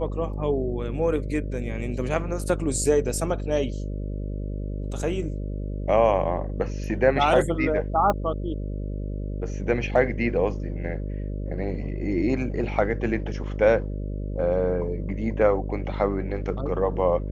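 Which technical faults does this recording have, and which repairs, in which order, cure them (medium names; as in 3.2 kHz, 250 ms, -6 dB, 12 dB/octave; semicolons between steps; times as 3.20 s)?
buzz 50 Hz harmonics 12 -30 dBFS
8.10 s: pop -11 dBFS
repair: de-click; de-hum 50 Hz, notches 12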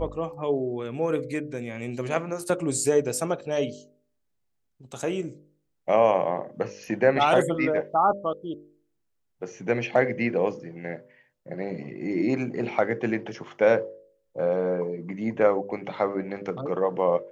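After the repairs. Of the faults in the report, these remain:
8.10 s: pop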